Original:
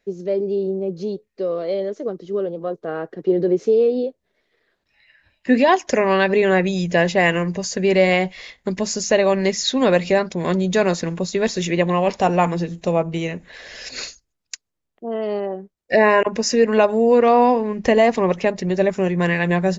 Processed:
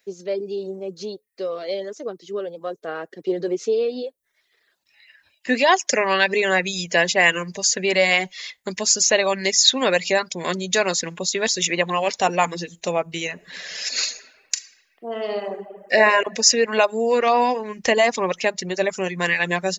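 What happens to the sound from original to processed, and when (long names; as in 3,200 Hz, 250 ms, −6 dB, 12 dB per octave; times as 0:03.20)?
0:13.32–0:15.97: thrown reverb, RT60 1.4 s, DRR 3.5 dB
whole clip: reverb reduction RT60 0.57 s; spectral tilt +3.5 dB per octave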